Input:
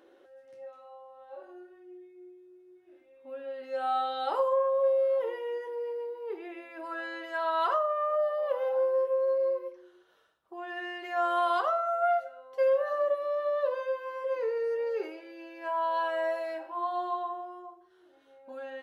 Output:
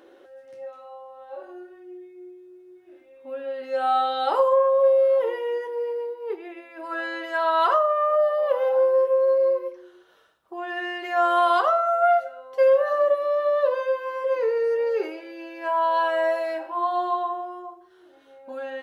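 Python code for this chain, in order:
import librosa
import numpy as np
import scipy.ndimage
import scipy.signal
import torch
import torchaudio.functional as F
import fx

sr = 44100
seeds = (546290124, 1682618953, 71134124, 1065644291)

y = fx.upward_expand(x, sr, threshold_db=-45.0, expansion=1.5, at=(5.67, 6.93))
y = y * 10.0 ** (7.5 / 20.0)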